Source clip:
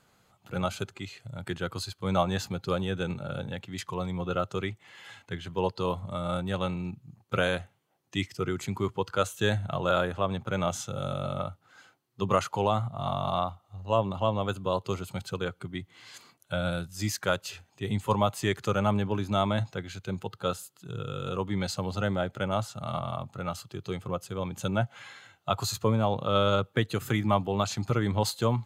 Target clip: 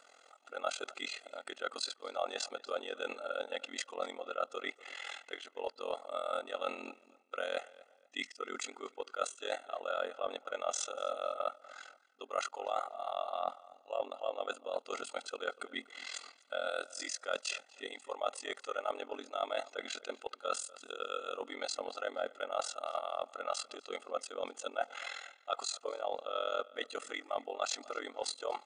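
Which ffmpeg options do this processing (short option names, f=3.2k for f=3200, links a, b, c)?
-filter_complex "[0:a]afftfilt=real='re*between(b*sr/4096,260,9800)':imag='im*between(b*sr/4096,260,9800)':win_size=4096:overlap=0.75,tremolo=f=42:d=0.919,areverse,acompressor=threshold=-42dB:ratio=8,areverse,aecho=1:1:1.5:0.72,asplit=2[a][b];[b]adelay=242,lowpass=f=4.1k:p=1,volume=-20.5dB,asplit=2[c][d];[d]adelay=242,lowpass=f=4.1k:p=1,volume=0.29[e];[a][c][e]amix=inputs=3:normalize=0,volume=6.5dB"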